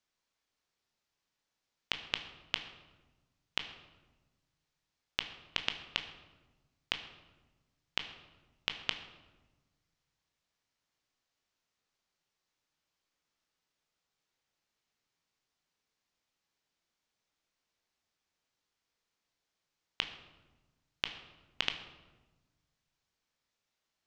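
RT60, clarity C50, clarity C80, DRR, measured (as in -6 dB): 1.2 s, 9.5 dB, 11.5 dB, 6.0 dB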